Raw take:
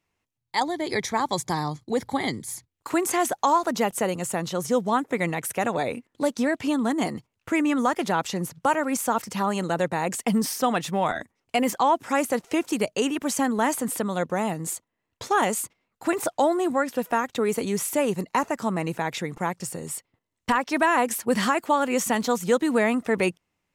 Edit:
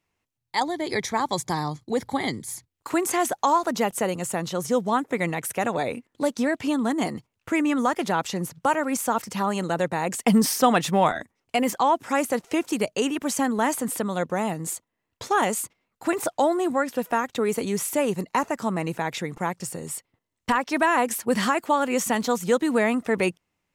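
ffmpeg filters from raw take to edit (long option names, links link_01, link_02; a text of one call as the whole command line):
ffmpeg -i in.wav -filter_complex "[0:a]asplit=3[link_01][link_02][link_03];[link_01]atrim=end=10.262[link_04];[link_02]atrim=start=10.258:end=11.092,asetpts=PTS-STARTPTS,volume=4.5dB[link_05];[link_03]atrim=start=11.088[link_06];[link_04][link_05]acrossfade=duration=0.004:curve1=hsin:curve2=hsin[link_07];[link_07][link_06]acrossfade=duration=0.004:curve1=hsin:curve2=hsin" out.wav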